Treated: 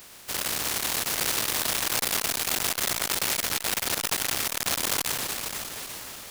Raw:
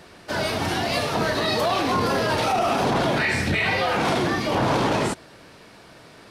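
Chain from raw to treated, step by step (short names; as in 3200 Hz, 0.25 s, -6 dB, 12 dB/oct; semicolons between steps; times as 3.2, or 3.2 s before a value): spectral contrast lowered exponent 0.11; diffused feedback echo 0.479 s, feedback 41%, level -7.5 dB; core saturation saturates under 4000 Hz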